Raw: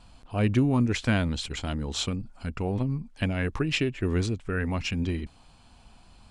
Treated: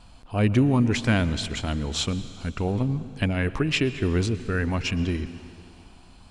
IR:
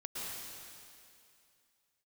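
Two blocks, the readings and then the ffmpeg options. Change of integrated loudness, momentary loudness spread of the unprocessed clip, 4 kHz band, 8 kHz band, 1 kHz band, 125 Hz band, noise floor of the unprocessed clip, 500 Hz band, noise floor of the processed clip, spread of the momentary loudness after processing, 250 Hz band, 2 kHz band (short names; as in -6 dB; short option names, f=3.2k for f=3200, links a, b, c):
+3.0 dB, 9 LU, +3.0 dB, +3.0 dB, +3.0 dB, +3.0 dB, -55 dBFS, +3.0 dB, -49 dBFS, 10 LU, +3.0 dB, +3.0 dB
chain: -filter_complex "[0:a]asplit=2[a][b];[1:a]atrim=start_sample=2205[c];[b][c]afir=irnorm=-1:irlink=0,volume=-13.5dB[d];[a][d]amix=inputs=2:normalize=0,volume=2dB"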